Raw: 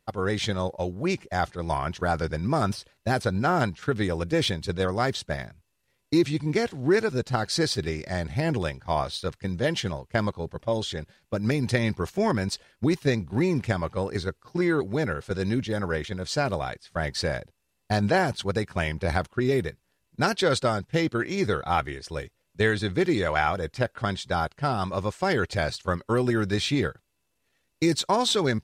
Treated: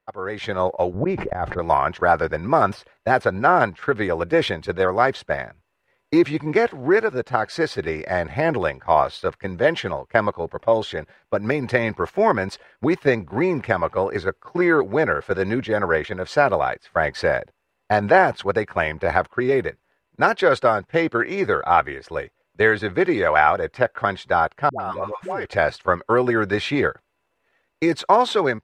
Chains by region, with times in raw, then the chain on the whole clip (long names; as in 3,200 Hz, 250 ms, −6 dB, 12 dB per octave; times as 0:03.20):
0:00.94–0:01.59: spectral tilt −3.5 dB per octave + volume swells 299 ms + level that may fall only so fast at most 46 dB per second
0:24.69–0:25.45: parametric band 4,600 Hz −3.5 dB 0.72 octaves + downward compressor, threshold −30 dBFS + all-pass dispersion highs, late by 111 ms, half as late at 540 Hz
whole clip: three-way crossover with the lows and the highs turned down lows −13 dB, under 390 Hz, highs −19 dB, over 2,400 Hz; automatic gain control gain up to 11.5 dB